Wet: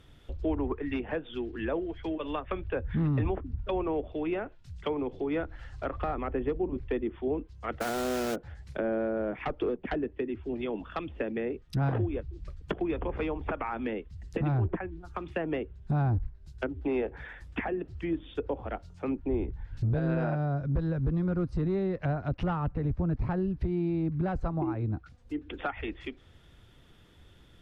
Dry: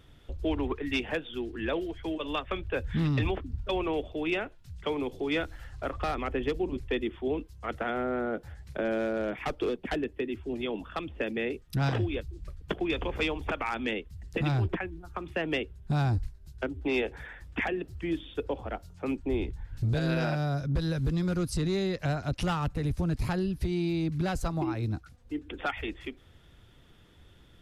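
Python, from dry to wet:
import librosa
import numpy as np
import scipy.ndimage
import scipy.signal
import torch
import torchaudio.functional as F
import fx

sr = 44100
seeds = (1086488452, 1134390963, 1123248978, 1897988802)

y = fx.env_lowpass_down(x, sr, base_hz=1300.0, full_db=-27.5)
y = fx.quant_dither(y, sr, seeds[0], bits=6, dither='none', at=(7.8, 8.34), fade=0.02)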